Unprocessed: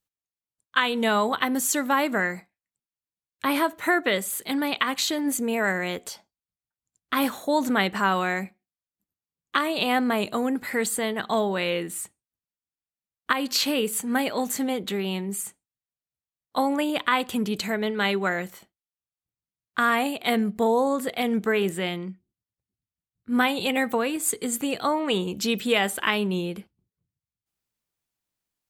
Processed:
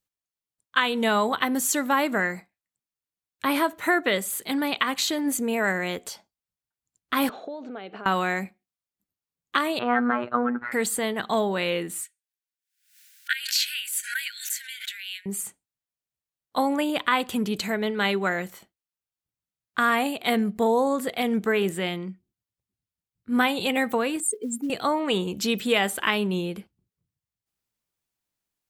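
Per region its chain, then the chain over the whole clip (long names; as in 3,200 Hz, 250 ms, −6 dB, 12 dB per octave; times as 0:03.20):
0:07.29–0:08.06: downward compressor 8 to 1, threshold −33 dBFS + loudspeaker in its box 240–3,800 Hz, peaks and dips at 440 Hz +7 dB, 700 Hz +6 dB, 1,000 Hz −8 dB, 1,900 Hz −9 dB, 3,500 Hz −5 dB
0:09.79–0:10.72: low-pass with resonance 1,400 Hz, resonance Q 4.8 + phases set to zero 121 Hz
0:12.03–0:15.26: linear-phase brick-wall high-pass 1,400 Hz + background raised ahead of every attack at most 100 dB per second
0:24.20–0:24.70: expanding power law on the bin magnitudes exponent 2.4 + Chebyshev band-pass filter 280–9,800 Hz + floating-point word with a short mantissa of 4 bits
whole clip: no processing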